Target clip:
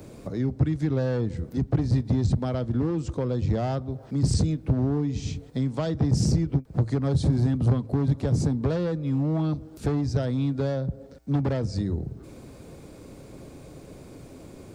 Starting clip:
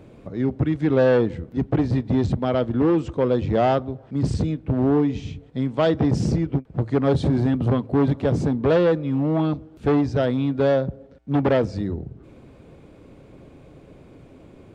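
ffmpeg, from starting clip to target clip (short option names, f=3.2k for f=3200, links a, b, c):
-filter_complex "[0:a]acrossover=split=170[a][b];[b]acompressor=threshold=-32dB:ratio=4[c];[a][c]amix=inputs=2:normalize=0,aexciter=amount=4.9:drive=2.8:freq=4.3k,volume=2dB"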